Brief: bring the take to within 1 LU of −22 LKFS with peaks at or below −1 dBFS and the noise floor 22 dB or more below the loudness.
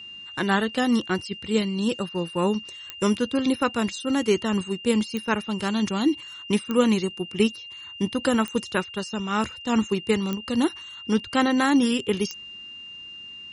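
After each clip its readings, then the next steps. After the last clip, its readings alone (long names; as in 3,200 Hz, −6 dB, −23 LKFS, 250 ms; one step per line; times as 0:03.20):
number of clicks 6; interfering tone 2,800 Hz; level of the tone −38 dBFS; integrated loudness −24.5 LKFS; sample peak −6.5 dBFS; target loudness −22.0 LKFS
→ click removal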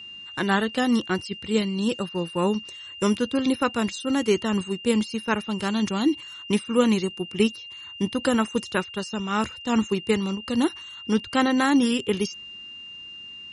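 number of clicks 0; interfering tone 2,800 Hz; level of the tone −38 dBFS
→ notch filter 2,800 Hz, Q 30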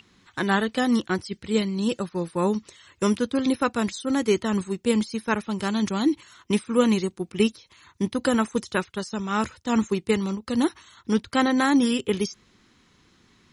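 interfering tone none found; integrated loudness −25.0 LKFS; sample peak −6.5 dBFS; target loudness −22.0 LKFS
→ level +3 dB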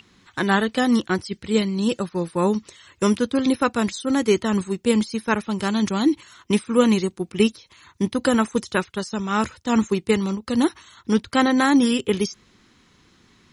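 integrated loudness −22.0 LKFS; sample peak −3.5 dBFS; background noise floor −59 dBFS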